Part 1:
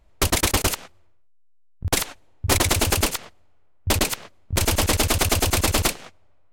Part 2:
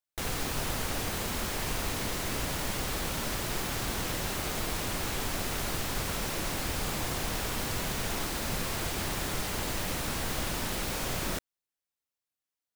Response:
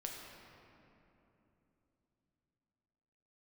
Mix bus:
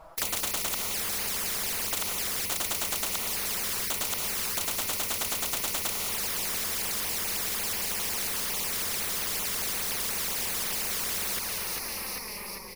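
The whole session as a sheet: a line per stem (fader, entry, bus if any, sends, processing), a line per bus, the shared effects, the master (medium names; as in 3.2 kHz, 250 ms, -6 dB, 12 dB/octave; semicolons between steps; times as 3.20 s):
-12.5 dB, 0.00 s, no send, no echo send, high-order bell 890 Hz +15.5 dB
-4.0 dB, 0.00 s, no send, echo send -8 dB, rippled EQ curve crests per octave 0.86, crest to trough 18 dB; step-sequenced notch 11 Hz 810–7500 Hz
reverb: none
echo: feedback delay 396 ms, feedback 49%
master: touch-sensitive flanger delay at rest 6.4 ms, full sweep at -27 dBFS; spectrum-flattening compressor 10:1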